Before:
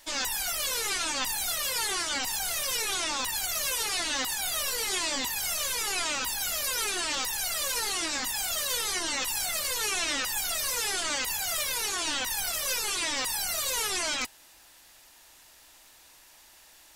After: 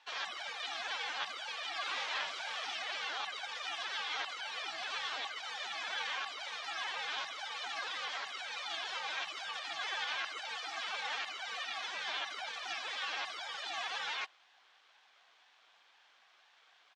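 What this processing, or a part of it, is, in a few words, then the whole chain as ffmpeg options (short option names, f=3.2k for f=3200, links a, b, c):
voice changer toy: -filter_complex "[0:a]asplit=3[a][b][c];[a]afade=t=out:st=1.85:d=0.02[d];[b]asplit=2[e][f];[f]adelay=47,volume=-3dB[g];[e][g]amix=inputs=2:normalize=0,afade=t=in:st=1.85:d=0.02,afade=t=out:st=2.72:d=0.02[h];[c]afade=t=in:st=2.72:d=0.02[i];[d][h][i]amix=inputs=3:normalize=0,aeval=exprs='val(0)*sin(2*PI*530*n/s+530*0.7/2*sin(2*PI*2*n/s))':c=same,highpass=600,equalizer=f=760:t=q:w=4:g=8,equalizer=f=1.1k:t=q:w=4:g=5,equalizer=f=1.6k:t=q:w=4:g=6,equalizer=f=2.3k:t=q:w=4:g=3,equalizer=f=3.3k:t=q:w=4:g=5,equalizer=f=4.8k:t=q:w=4:g=-3,lowpass=f=4.8k:w=0.5412,lowpass=f=4.8k:w=1.3066,volume=-7dB"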